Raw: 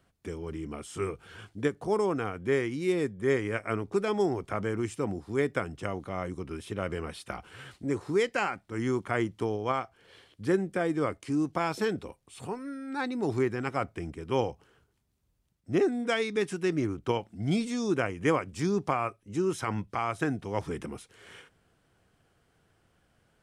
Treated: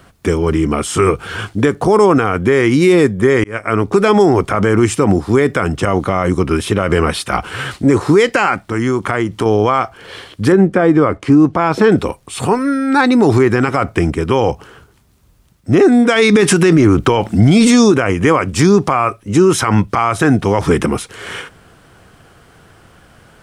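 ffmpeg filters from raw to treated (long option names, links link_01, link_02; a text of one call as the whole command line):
ffmpeg -i in.wav -filter_complex "[0:a]asettb=1/sr,asplit=3[link_01][link_02][link_03];[link_01]atrim=end=8.604[link_04];[link_02]atrim=start=8.6:end=9.46,asetpts=PTS-STARTPTS,afade=type=in:duration=0.004:curve=qsin,afade=type=out:start_time=0.856:duration=0.004:curve=qsin,acompressor=threshold=-39dB:ratio=2.5:attack=3.2:release=140:knee=1:detection=peak[link_05];[link_03]atrim=start=9.456[link_06];[link_04][link_05]acrossfade=duration=0.004:curve1=hsin:curve2=qsin[link_07];[link_07][link_06]acrossfade=duration=0.004:curve1=qsin:curve2=hsin,asettb=1/sr,asplit=3[link_08][link_09][link_10];[link_08]atrim=end=10.524[link_11];[link_09]atrim=start=10.52:end=11.92,asetpts=PTS-STARTPTS,afade=type=in:duration=0.004:curve=qsin,afade=type=out:start_time=1.396:duration=0.004:curve=qsin,lowpass=frequency=1600:poles=1[link_12];[link_10]atrim=start=11.916[link_13];[link_11][link_12]acrossfade=duration=0.004:curve1=hsin:curve2=qsin[link_14];[link_14][link_13]acrossfade=duration=0.004:curve1=qsin:curve2=hsin,asplit=4[link_15][link_16][link_17][link_18];[link_15]atrim=end=3.44,asetpts=PTS-STARTPTS,afade=type=out:start_time=3.436:duration=0.004:curve=hsin[link_19];[link_16]atrim=start=3.44:end=16.162,asetpts=PTS-STARTPTS,afade=type=in:duration=0.56[link_20];[link_17]atrim=start=16.158:end=17.922,asetpts=PTS-STARTPTS,volume=8dB[link_21];[link_18]atrim=start=17.918[link_22];[link_19][link_20]concat=n=2:v=0:a=1[link_23];[link_23][link_21]acrossfade=duration=0.004:curve1=hsin:curve2=hsin[link_24];[link_24][link_22]acrossfade=duration=0.004:curve1=hsin:curve2=hsin,equalizer=frequency=1200:width_type=o:width=0.76:gain=3.5,alimiter=level_in=23.5dB:limit=-1dB:release=50:level=0:latency=1,volume=-1dB" out.wav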